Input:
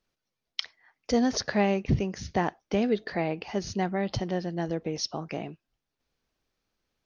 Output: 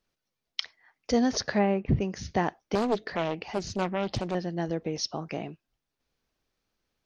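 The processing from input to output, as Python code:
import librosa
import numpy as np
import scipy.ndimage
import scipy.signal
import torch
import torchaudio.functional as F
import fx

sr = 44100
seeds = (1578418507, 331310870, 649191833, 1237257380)

y = fx.lowpass(x, sr, hz=2000.0, slope=12, at=(1.58, 2.0), fade=0.02)
y = fx.doppler_dist(y, sr, depth_ms=0.81, at=(2.75, 4.35))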